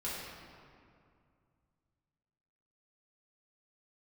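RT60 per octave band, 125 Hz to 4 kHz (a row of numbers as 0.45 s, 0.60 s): 3.3 s, 2.7 s, 2.3 s, 2.3 s, 1.9 s, 1.4 s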